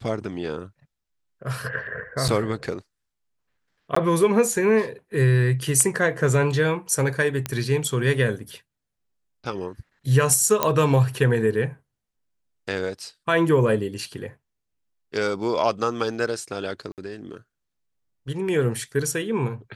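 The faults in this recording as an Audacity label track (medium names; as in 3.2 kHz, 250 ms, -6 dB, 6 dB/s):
2.280000	2.290000	dropout 7 ms
3.950000	3.960000	dropout 14 ms
7.460000	7.460000	pop -10 dBFS
10.630000	10.630000	pop -4 dBFS
16.920000	16.980000	dropout 58 ms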